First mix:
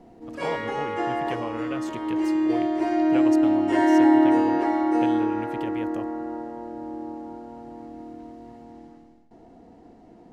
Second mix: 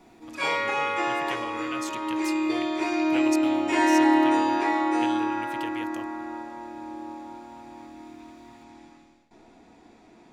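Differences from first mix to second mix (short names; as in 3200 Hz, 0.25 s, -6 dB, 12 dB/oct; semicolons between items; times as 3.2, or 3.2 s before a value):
background: send +10.0 dB; master: add tilt shelf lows -9.5 dB, about 1500 Hz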